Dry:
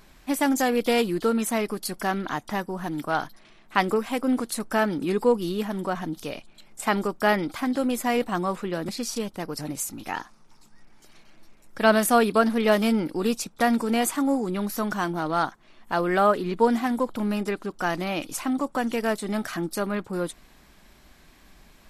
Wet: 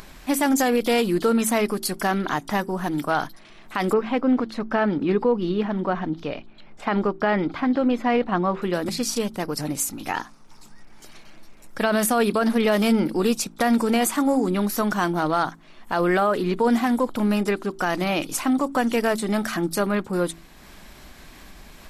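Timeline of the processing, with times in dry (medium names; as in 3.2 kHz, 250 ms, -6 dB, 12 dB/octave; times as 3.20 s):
3.93–8.62 s: distance through air 260 m
whole clip: de-hum 55.24 Hz, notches 7; peak limiter -16.5 dBFS; upward compressor, threshold -42 dBFS; trim +5 dB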